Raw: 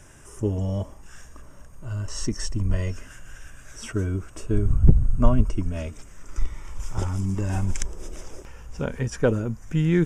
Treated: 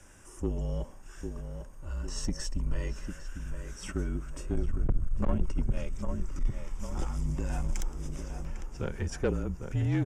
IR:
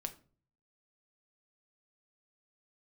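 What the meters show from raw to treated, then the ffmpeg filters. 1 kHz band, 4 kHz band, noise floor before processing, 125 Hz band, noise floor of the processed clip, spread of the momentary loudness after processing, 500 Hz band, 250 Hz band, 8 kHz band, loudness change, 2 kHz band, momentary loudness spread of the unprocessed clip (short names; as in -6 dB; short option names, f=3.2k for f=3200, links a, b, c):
-7.0 dB, -6.0 dB, -46 dBFS, -9.0 dB, -48 dBFS, 10 LU, -8.5 dB, -8.5 dB, -6.5 dB, -9.0 dB, -7.5 dB, 20 LU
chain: -filter_complex "[0:a]asplit=2[a][b];[b]adelay=801,lowpass=f=2k:p=1,volume=-8dB,asplit=2[c][d];[d]adelay=801,lowpass=f=2k:p=1,volume=0.51,asplit=2[e][f];[f]adelay=801,lowpass=f=2k:p=1,volume=0.51,asplit=2[g][h];[h]adelay=801,lowpass=f=2k:p=1,volume=0.51,asplit=2[i][j];[j]adelay=801,lowpass=f=2k:p=1,volume=0.51,asplit=2[k][l];[l]adelay=801,lowpass=f=2k:p=1,volume=0.51[m];[a][c][e][g][i][k][m]amix=inputs=7:normalize=0,asoftclip=type=tanh:threshold=-16.5dB,afreqshift=-40,volume=-5dB"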